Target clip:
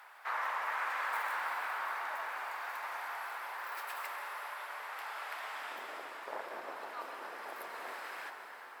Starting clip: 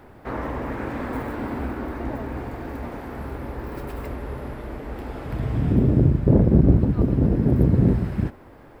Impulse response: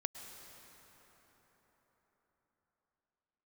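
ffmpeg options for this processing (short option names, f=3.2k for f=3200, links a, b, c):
-filter_complex "[0:a]highpass=f=970:w=0.5412,highpass=f=970:w=1.3066[a];[1:a]atrim=start_sample=2205,asetrate=37485,aresample=44100[b];[a][b]afir=irnorm=-1:irlink=0,volume=2dB"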